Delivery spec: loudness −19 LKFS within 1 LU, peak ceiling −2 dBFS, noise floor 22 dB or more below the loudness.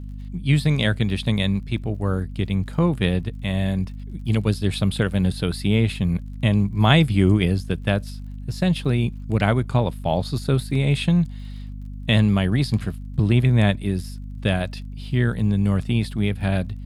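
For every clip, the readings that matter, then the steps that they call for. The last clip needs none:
crackle rate 38 per second; mains hum 50 Hz; hum harmonics up to 250 Hz; level of the hum −32 dBFS; integrated loudness −22.0 LKFS; sample peak −1.5 dBFS; target loudness −19.0 LKFS
→ click removal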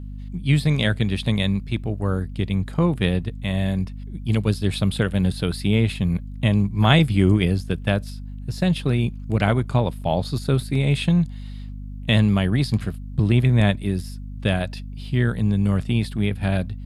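crackle rate 0.059 per second; mains hum 50 Hz; hum harmonics up to 250 Hz; level of the hum −32 dBFS
→ hum removal 50 Hz, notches 5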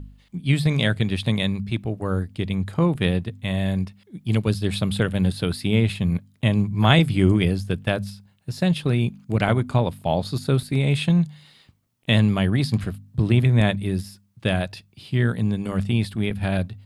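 mains hum none found; integrated loudness −22.5 LKFS; sample peak −1.5 dBFS; target loudness −19.0 LKFS
→ level +3.5 dB
brickwall limiter −2 dBFS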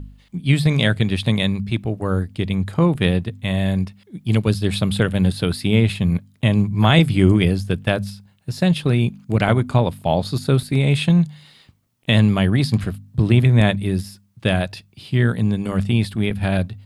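integrated loudness −19.0 LKFS; sample peak −2.0 dBFS; background noise floor −56 dBFS

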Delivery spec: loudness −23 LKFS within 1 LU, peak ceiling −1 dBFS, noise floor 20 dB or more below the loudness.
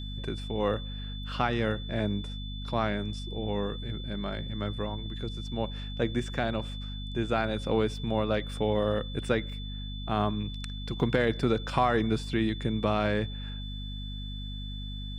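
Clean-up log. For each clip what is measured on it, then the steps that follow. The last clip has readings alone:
mains hum 50 Hz; hum harmonics up to 250 Hz; level of the hum −35 dBFS; interfering tone 3,500 Hz; level of the tone −43 dBFS; integrated loudness −31.0 LKFS; sample peak −10.5 dBFS; target loudness −23.0 LKFS
→ mains-hum notches 50/100/150/200/250 Hz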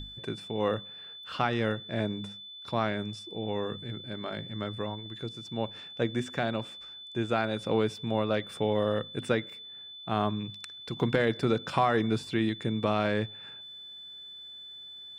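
mains hum none found; interfering tone 3,500 Hz; level of the tone −43 dBFS
→ notch filter 3,500 Hz, Q 30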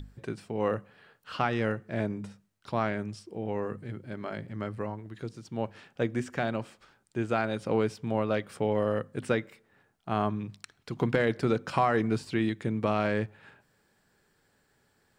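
interfering tone none found; integrated loudness −31.5 LKFS; sample peak −11.5 dBFS; target loudness −23.0 LKFS
→ level +8.5 dB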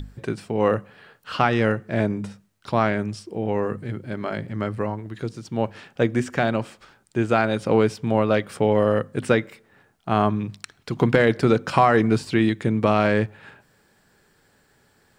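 integrated loudness −23.0 LKFS; sample peak −3.0 dBFS; background noise floor −62 dBFS

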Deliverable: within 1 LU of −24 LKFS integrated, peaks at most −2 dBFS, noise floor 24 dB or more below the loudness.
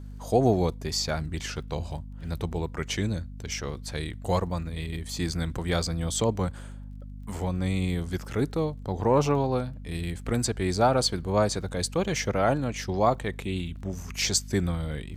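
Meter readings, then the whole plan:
crackle rate 26 per second; mains hum 50 Hz; hum harmonics up to 250 Hz; level of the hum −38 dBFS; integrated loudness −28.0 LKFS; sample peak −9.5 dBFS; target loudness −24.0 LKFS
→ click removal
mains-hum notches 50/100/150/200/250 Hz
level +4 dB

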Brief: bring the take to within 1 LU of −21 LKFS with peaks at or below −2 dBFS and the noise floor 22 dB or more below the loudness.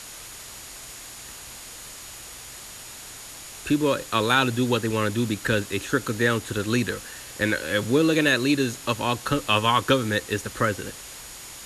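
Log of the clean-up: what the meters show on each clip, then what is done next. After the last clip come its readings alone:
interfering tone 6,800 Hz; level of the tone −47 dBFS; background noise floor −41 dBFS; target noise floor −46 dBFS; integrated loudness −23.5 LKFS; sample peak −7.0 dBFS; target loudness −21.0 LKFS
→ notch filter 6,800 Hz, Q 30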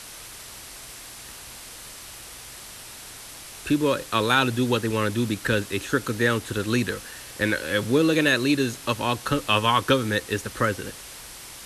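interfering tone none found; background noise floor −42 dBFS; target noise floor −46 dBFS
→ noise reduction from a noise print 6 dB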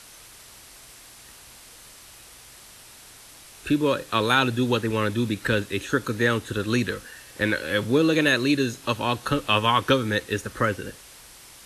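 background noise floor −48 dBFS; integrated loudness −23.5 LKFS; sample peak −7.0 dBFS; target loudness −21.0 LKFS
→ level +2.5 dB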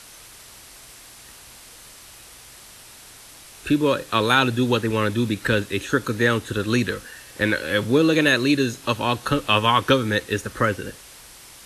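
integrated loudness −21.0 LKFS; sample peak −4.5 dBFS; background noise floor −45 dBFS

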